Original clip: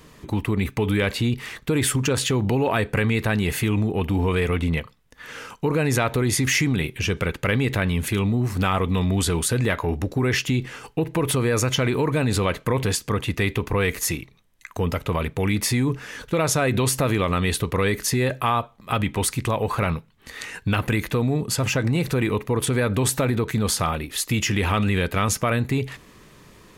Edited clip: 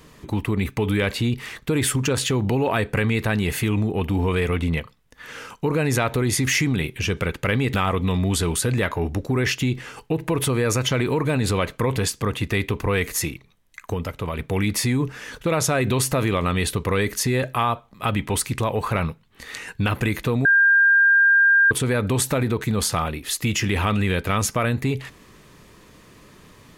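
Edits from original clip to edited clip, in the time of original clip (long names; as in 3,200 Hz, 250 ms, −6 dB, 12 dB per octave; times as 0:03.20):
0:07.74–0:08.61: remove
0:14.81–0:15.26: clip gain −4 dB
0:21.32–0:22.58: beep over 1,600 Hz −12 dBFS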